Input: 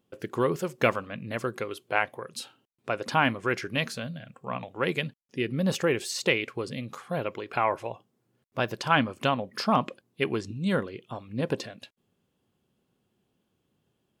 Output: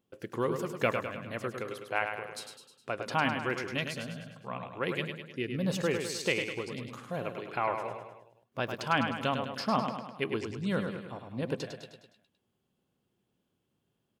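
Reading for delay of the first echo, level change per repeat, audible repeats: 0.103 s, -5.5 dB, 5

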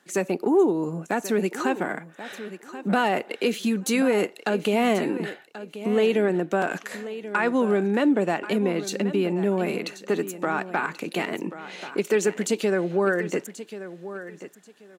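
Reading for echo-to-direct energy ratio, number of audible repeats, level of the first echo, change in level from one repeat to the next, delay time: -13.5 dB, 2, -13.5 dB, -13.5 dB, 1.084 s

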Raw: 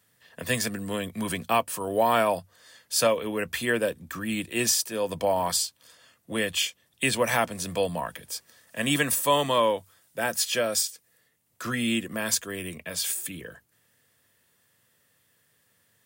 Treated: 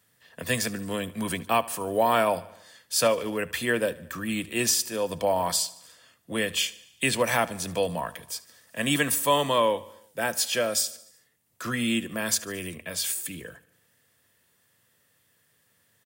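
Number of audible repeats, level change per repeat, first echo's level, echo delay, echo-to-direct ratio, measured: 4, -4.5 dB, -20.0 dB, 74 ms, -18.0 dB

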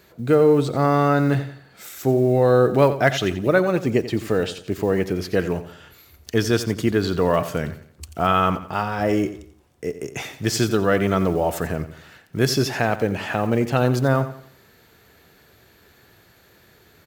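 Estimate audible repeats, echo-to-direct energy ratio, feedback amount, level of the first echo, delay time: 3, -12.5 dB, 37%, -13.0 dB, 88 ms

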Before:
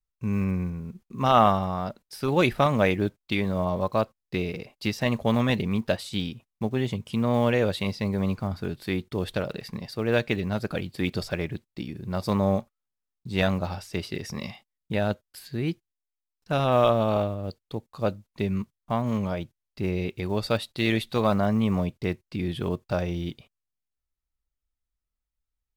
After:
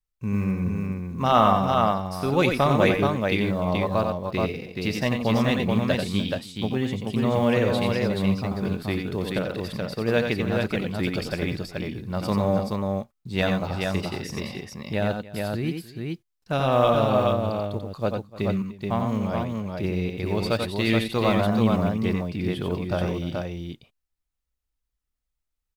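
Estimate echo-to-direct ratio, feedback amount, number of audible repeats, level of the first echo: -1.0 dB, no steady repeat, 3, -5.0 dB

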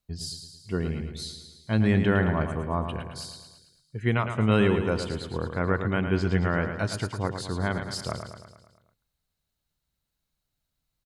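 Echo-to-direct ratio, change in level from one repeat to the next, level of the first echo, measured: -6.5 dB, -5.0 dB, -8.0 dB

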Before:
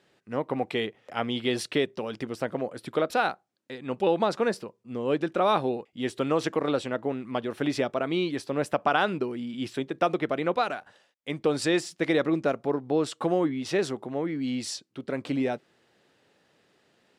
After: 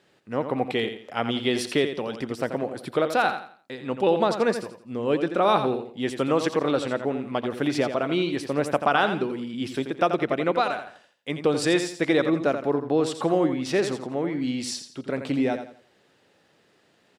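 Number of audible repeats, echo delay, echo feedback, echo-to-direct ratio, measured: 3, 85 ms, 31%, -8.5 dB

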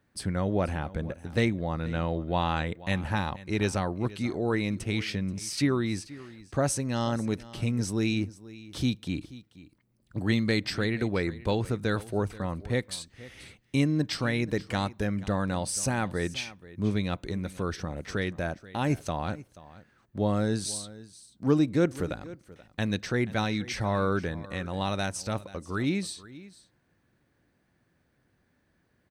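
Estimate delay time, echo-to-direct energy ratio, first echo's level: 0.482 s, -18.5 dB, -18.5 dB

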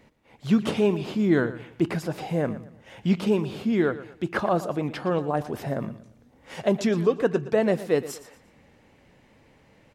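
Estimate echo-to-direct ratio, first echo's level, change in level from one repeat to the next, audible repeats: -14.5 dB, -15.0 dB, -9.5 dB, 3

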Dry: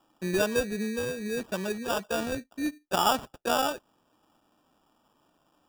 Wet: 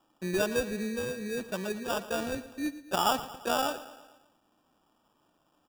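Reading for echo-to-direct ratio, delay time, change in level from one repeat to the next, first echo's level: -14.0 dB, 0.114 s, -5.0 dB, -15.5 dB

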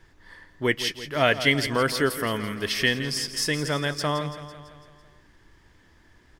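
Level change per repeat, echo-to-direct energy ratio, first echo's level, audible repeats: -4.5 dB, -10.5 dB, -12.5 dB, 5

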